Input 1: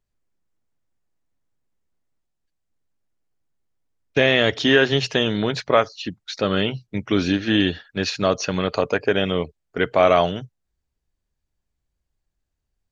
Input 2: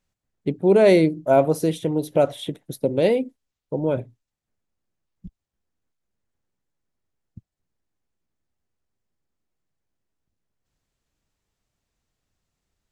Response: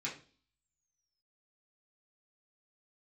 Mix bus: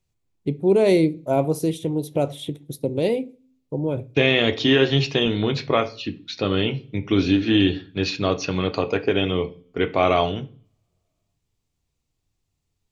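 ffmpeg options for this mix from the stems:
-filter_complex "[0:a]lowpass=4.4k,volume=0dB,asplit=2[a][b];[b]volume=-7.5dB[c];[1:a]volume=-1dB,asplit=2[d][e];[e]volume=-14dB[f];[2:a]atrim=start_sample=2205[g];[c][f]amix=inputs=2:normalize=0[h];[h][g]afir=irnorm=-1:irlink=0[i];[a][d][i]amix=inputs=3:normalize=0,equalizer=f=100:t=o:w=0.67:g=7,equalizer=f=630:t=o:w=0.67:g=-4,equalizer=f=1.6k:t=o:w=0.67:g=-9"

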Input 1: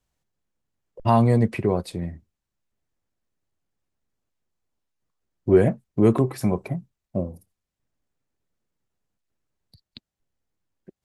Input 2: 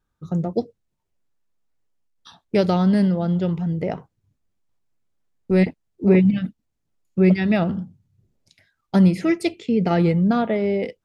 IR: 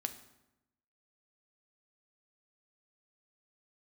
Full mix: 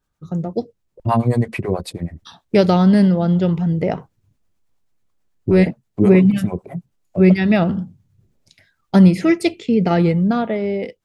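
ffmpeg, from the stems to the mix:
-filter_complex "[0:a]acrossover=split=520[a][b];[a]aeval=exprs='val(0)*(1-1/2+1/2*cos(2*PI*9.3*n/s))':c=same[c];[b]aeval=exprs='val(0)*(1-1/2-1/2*cos(2*PI*9.3*n/s))':c=same[d];[c][d]amix=inputs=2:normalize=0,volume=2.5dB[e];[1:a]volume=0dB,asplit=2[f][g];[g]apad=whole_len=487084[h];[e][h]sidechaincompress=threshold=-22dB:ratio=8:attack=27:release=401[i];[i][f]amix=inputs=2:normalize=0,dynaudnorm=f=120:g=21:m=8dB"

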